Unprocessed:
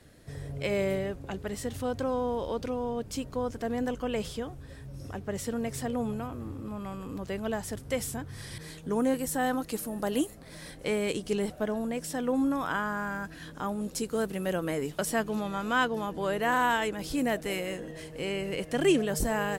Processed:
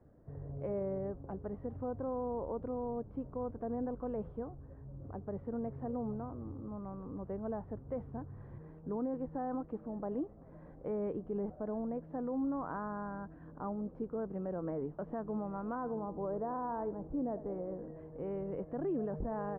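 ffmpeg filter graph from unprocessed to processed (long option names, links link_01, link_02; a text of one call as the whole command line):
ffmpeg -i in.wav -filter_complex "[0:a]asettb=1/sr,asplit=3[link_01][link_02][link_03];[link_01]atrim=end=15.754[link_04];[link_02]atrim=start=15.75:end=17.79,asetpts=PTS-STARTPTS,afade=type=in:duration=0.004:curve=qsin,afade=type=out:start_time=2.036:duration=0.004:curve=qsin,lowpass=1100,aecho=1:1:80|160|240:0.133|0.0427|0.0137,atrim=end_sample=89964[link_05];[link_03]atrim=start=17.786[link_06];[link_04][link_05]acrossfade=duration=0.004:curve1=hsin:curve2=qsin[link_07];[link_07][link_06]acrossfade=duration=0.004:curve1=qsin:curve2=hsin,lowpass=frequency=1100:width=0.5412,lowpass=frequency=1100:width=1.3066,alimiter=limit=-23.5dB:level=0:latency=1:release=36,volume=-5.5dB" out.wav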